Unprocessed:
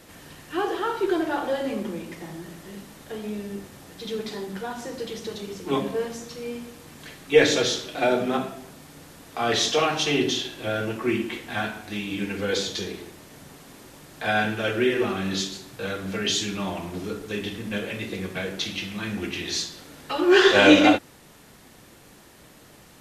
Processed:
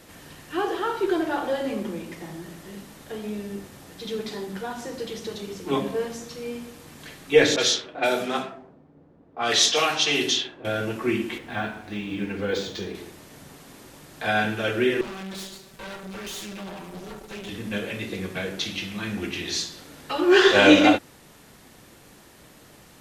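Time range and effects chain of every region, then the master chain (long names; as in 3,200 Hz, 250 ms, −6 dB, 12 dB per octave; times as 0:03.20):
0:07.56–0:10.65: low-pass that shuts in the quiet parts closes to 350 Hz, open at −18 dBFS + spectral tilt +2.5 dB per octave
0:11.38–0:12.95: high-shelf EQ 3,100 Hz −8 dB + linearly interpolated sample-rate reduction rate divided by 2×
0:15.01–0:17.49: lower of the sound and its delayed copy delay 5.2 ms + tube saturation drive 33 dB, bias 0.65
whole clip: no processing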